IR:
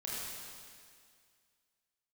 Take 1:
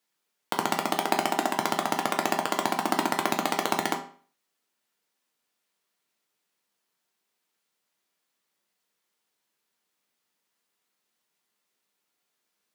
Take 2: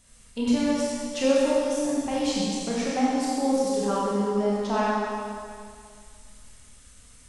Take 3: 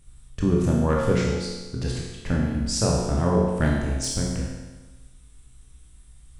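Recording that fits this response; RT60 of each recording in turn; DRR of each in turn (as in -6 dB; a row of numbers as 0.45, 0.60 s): 2; 0.45, 2.1, 1.2 s; 2.0, -7.0, -3.5 dB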